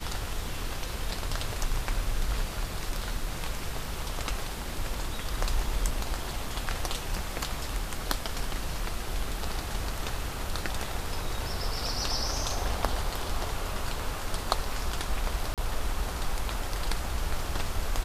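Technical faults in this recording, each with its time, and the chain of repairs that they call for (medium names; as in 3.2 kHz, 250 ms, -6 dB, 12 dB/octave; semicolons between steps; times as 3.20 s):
15.54–15.58 s: dropout 37 ms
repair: interpolate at 15.54 s, 37 ms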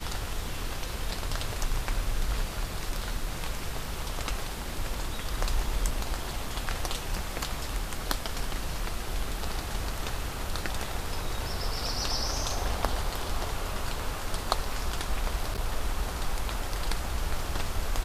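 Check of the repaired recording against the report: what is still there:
nothing left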